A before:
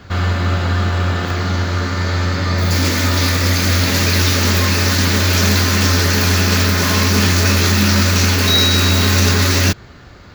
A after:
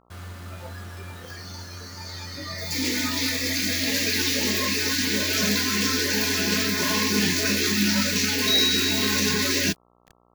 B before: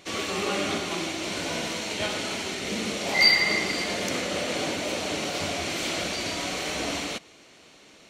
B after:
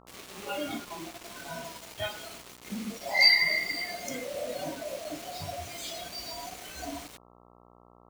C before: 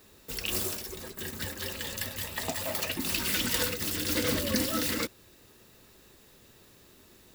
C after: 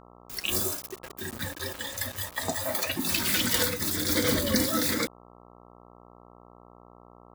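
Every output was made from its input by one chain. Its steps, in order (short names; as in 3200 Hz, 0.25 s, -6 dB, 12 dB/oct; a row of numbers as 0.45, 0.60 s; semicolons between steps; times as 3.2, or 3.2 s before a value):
spectral noise reduction 16 dB; bit-crush 7-bit; buzz 60 Hz, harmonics 22, -56 dBFS -1 dB/oct; normalise peaks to -9 dBFS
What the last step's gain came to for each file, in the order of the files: -6.0, -1.5, +3.5 dB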